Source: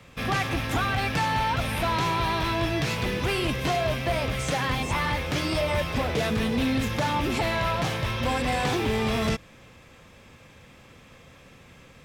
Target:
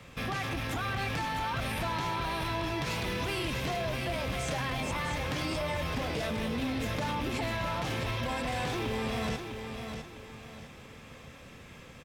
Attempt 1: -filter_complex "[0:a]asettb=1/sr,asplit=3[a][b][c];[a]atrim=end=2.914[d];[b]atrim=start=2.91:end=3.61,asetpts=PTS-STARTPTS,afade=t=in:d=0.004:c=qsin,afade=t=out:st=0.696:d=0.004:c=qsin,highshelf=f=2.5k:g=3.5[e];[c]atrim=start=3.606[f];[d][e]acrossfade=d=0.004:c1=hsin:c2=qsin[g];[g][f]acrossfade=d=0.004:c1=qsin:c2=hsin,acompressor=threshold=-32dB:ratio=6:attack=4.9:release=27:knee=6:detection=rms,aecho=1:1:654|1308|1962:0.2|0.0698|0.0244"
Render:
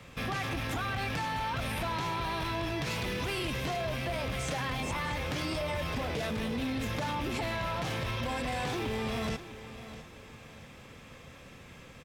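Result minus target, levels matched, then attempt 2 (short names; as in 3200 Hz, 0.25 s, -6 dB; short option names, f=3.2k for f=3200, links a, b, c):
echo-to-direct -7 dB
-filter_complex "[0:a]asettb=1/sr,asplit=3[a][b][c];[a]atrim=end=2.914[d];[b]atrim=start=2.91:end=3.61,asetpts=PTS-STARTPTS,afade=t=in:d=0.004:c=qsin,afade=t=out:st=0.696:d=0.004:c=qsin,highshelf=f=2.5k:g=3.5[e];[c]atrim=start=3.606[f];[d][e]acrossfade=d=0.004:c1=hsin:c2=qsin[g];[g][f]acrossfade=d=0.004:c1=qsin:c2=hsin,acompressor=threshold=-32dB:ratio=6:attack=4.9:release=27:knee=6:detection=rms,aecho=1:1:654|1308|1962|2616:0.447|0.156|0.0547|0.0192"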